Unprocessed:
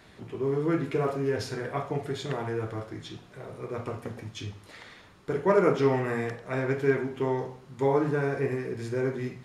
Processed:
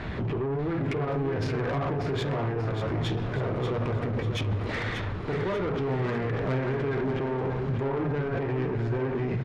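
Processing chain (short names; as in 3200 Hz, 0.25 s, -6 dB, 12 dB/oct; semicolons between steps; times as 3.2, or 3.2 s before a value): LPF 2600 Hz 12 dB/oct; low shelf 130 Hz +11 dB; in parallel at +2.5 dB: negative-ratio compressor -37 dBFS; on the sum: limiter -23 dBFS, peak gain reduction 13 dB; soft clip -31 dBFS, distortion -12 dB; on a send: feedback echo 0.588 s, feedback 45%, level -8 dB; on the sum: gain +5.5 dB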